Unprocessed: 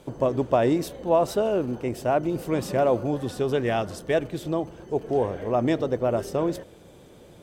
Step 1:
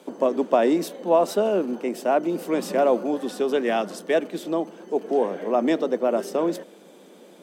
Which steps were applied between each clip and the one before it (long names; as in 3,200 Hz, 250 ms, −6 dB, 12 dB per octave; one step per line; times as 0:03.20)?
Butterworth high-pass 180 Hz 72 dB per octave
level +2 dB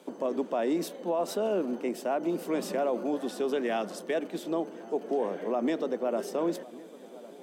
brickwall limiter −16 dBFS, peak gain reduction 9 dB
delay with a low-pass on its return 1,105 ms, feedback 60%, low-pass 1,600 Hz, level −19 dB
level −4.5 dB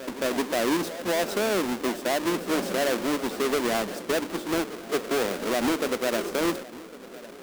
each half-wave held at its own peak
echo ahead of the sound 218 ms −14 dB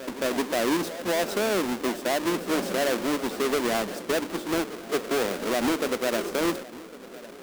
no processing that can be heard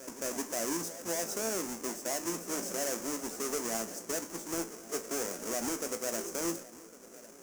high shelf with overshoot 4,900 Hz +8.5 dB, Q 3
tuned comb filter 56 Hz, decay 0.24 s, harmonics all, mix 70%
level −6.5 dB